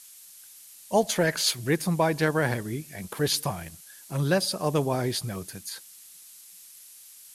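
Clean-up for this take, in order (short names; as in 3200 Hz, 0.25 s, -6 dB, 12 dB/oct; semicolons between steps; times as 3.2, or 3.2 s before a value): de-click; noise print and reduce 22 dB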